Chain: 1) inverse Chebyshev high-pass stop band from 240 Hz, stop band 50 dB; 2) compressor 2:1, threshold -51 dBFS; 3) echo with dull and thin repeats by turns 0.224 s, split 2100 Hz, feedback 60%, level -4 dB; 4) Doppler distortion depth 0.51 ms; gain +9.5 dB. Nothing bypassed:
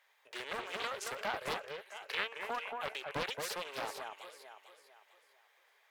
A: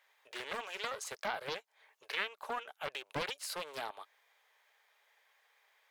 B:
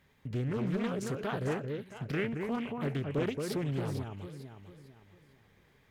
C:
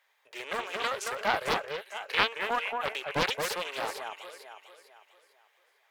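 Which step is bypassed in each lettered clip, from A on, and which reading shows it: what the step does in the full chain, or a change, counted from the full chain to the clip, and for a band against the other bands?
3, crest factor change +1.5 dB; 1, 125 Hz band +25.5 dB; 2, mean gain reduction 6.5 dB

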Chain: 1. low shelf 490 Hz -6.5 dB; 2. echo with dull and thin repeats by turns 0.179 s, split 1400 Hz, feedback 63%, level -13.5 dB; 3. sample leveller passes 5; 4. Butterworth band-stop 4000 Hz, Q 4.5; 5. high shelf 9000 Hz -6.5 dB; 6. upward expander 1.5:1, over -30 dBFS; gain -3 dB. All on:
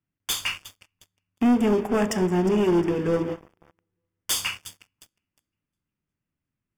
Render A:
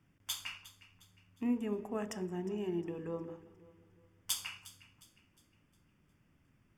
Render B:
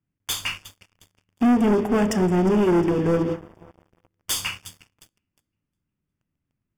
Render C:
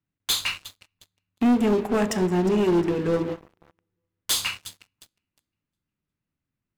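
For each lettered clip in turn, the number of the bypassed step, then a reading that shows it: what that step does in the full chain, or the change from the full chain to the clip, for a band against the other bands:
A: 3, crest factor change +13.0 dB; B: 1, 125 Hz band +2.5 dB; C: 4, 4 kHz band +3.0 dB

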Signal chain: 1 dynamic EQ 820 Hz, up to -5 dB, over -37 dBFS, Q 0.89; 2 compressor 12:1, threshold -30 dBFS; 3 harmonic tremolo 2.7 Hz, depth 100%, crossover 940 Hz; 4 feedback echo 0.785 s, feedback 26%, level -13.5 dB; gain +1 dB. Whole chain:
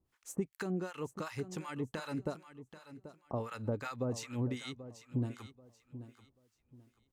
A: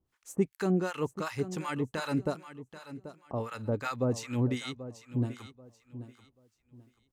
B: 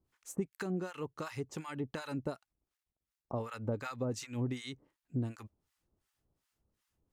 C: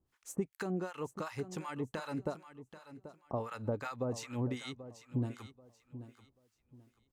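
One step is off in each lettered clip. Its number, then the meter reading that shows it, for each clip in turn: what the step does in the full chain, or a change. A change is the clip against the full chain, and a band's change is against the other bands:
2, mean gain reduction 5.5 dB; 4, momentary loudness spread change -9 LU; 1, 1 kHz band +2.5 dB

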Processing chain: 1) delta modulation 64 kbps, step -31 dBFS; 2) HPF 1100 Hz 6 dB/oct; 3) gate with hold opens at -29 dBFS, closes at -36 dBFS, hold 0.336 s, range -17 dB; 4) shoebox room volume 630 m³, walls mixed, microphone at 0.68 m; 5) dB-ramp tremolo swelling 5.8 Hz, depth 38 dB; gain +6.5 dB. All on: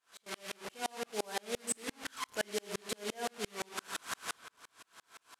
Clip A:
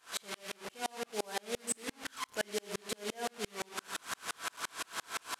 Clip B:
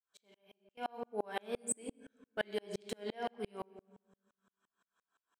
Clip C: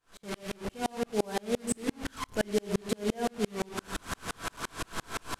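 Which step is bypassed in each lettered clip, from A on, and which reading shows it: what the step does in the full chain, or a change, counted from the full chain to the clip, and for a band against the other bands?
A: 3, momentary loudness spread change -13 LU; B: 1, 4 kHz band -7.5 dB; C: 2, 125 Hz band +11.5 dB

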